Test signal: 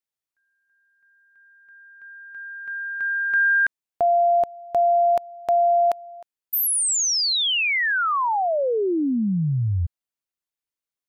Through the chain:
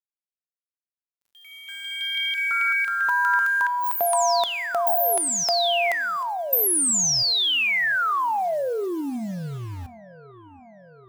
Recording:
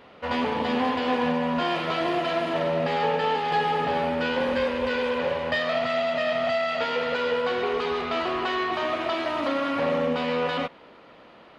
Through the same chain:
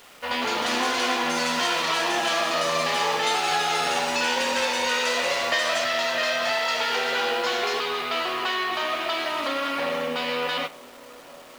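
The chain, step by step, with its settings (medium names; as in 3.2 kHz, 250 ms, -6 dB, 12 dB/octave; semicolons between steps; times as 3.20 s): tilt EQ +3.5 dB/octave; compression 12:1, threshold -20 dBFS; word length cut 8-bit, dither none; ever faster or slower copies 253 ms, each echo +6 st, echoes 2; on a send: feedback echo behind a low-pass 733 ms, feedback 69%, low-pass 1 kHz, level -19.5 dB; on the sum: Schroeder reverb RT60 0.41 s, combs from 25 ms, DRR 17.5 dB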